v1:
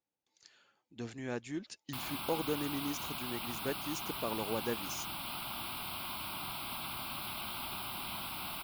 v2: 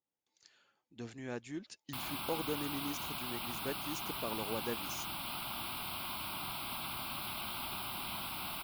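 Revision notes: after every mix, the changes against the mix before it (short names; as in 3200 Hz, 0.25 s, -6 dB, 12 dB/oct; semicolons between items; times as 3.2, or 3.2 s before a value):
speech -3.0 dB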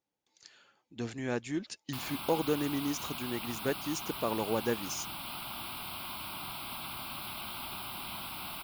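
speech +8.0 dB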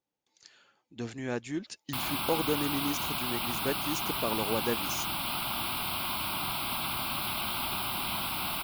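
background +8.0 dB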